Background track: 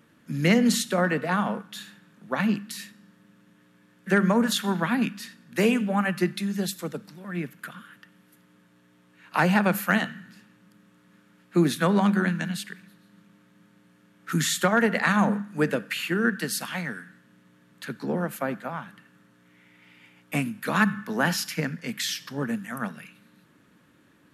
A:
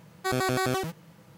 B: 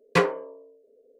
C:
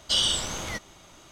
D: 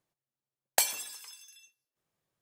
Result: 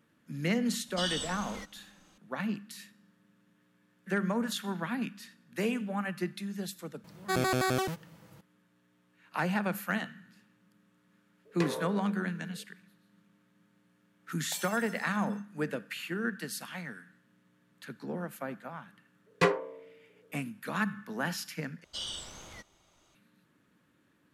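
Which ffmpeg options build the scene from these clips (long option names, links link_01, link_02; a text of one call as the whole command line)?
ffmpeg -i bed.wav -i cue0.wav -i cue1.wav -i cue2.wav -i cue3.wav -filter_complex "[3:a]asplit=2[link_01][link_02];[2:a]asplit=2[link_03][link_04];[0:a]volume=-9.5dB[link_05];[link_01]aecho=1:1:3.8:0.93[link_06];[link_03]acompressor=threshold=-31dB:ratio=6:attack=3.2:release=140:knee=1:detection=peak[link_07];[4:a]alimiter=limit=-18.5dB:level=0:latency=1:release=100[link_08];[link_05]asplit=2[link_09][link_10];[link_09]atrim=end=21.844[link_11];[link_02]atrim=end=1.31,asetpts=PTS-STARTPTS,volume=-15dB[link_12];[link_10]atrim=start=23.146[link_13];[link_06]atrim=end=1.31,asetpts=PTS-STARTPTS,volume=-14dB,afade=type=in:duration=0.004:curve=hsin,afade=type=out:start_time=1.306:duration=0.004:curve=hsin,adelay=870[link_14];[1:a]atrim=end=1.37,asetpts=PTS-STARTPTS,volume=-2dB,afade=type=in:duration=0.004:curve=hsin,afade=type=out:start_time=1.366:duration=0.004:curve=hsin,adelay=7040[link_15];[link_07]atrim=end=1.19,asetpts=PTS-STARTPTS,volume=-0.5dB,afade=type=in:duration=0.004:curve=hsin,afade=type=out:start_time=1.186:duration=0.004:curve=hsin,adelay=11450[link_16];[link_08]atrim=end=2.41,asetpts=PTS-STARTPTS,volume=-7.5dB,afade=type=in:duration=0.004:curve=hsin,afade=type=out:start_time=2.406:duration=0.004:curve=hsin,adelay=13740[link_17];[link_04]atrim=end=1.19,asetpts=PTS-STARTPTS,volume=-4.5dB,afade=type=in:duration=0.004:curve=hsin,afade=type=out:start_time=1.186:duration=0.004:curve=hsin,adelay=19260[link_18];[link_11][link_12]acrossfade=duration=0.004:curve1=hsin:curve2=hsin[link_19];[link_19][link_13]acrossfade=duration=0.004:curve1=hsin:curve2=hsin[link_20];[link_20][link_14][link_15][link_16][link_17][link_18]amix=inputs=6:normalize=0" out.wav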